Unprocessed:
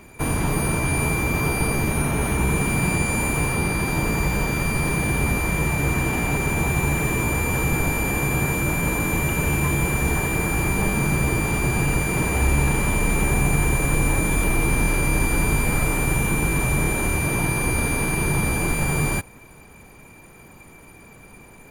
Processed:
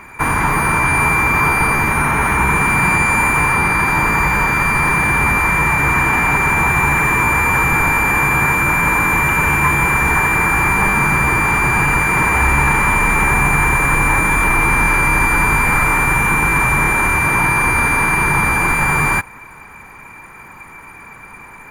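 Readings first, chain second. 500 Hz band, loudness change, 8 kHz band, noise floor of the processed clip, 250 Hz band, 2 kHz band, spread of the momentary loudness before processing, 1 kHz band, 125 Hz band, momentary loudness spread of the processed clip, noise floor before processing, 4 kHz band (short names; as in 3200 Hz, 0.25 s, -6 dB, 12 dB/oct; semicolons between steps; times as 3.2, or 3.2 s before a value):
+2.5 dB, +8.5 dB, +2.0 dB, -38 dBFS, +2.0 dB, +12.0 dB, 1 LU, +14.0 dB, +2.0 dB, 1 LU, -46 dBFS, +2.5 dB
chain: band shelf 1400 Hz +13.5 dB; gain +2 dB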